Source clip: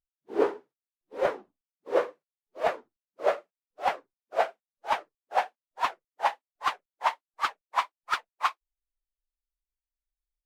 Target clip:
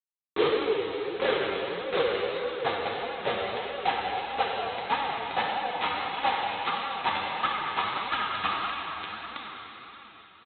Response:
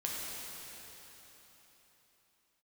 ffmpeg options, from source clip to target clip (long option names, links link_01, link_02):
-filter_complex "[0:a]aecho=1:1:2.4:0.76,aecho=1:1:905:0.316,aresample=8000,acrusher=bits=3:mix=0:aa=0.000001,aresample=44100,highpass=65,bandreject=frequency=870:width=22[link_01];[1:a]atrim=start_sample=2205[link_02];[link_01][link_02]afir=irnorm=-1:irlink=0,flanger=delay=3.5:depth=7:regen=26:speed=1.6:shape=sinusoidal"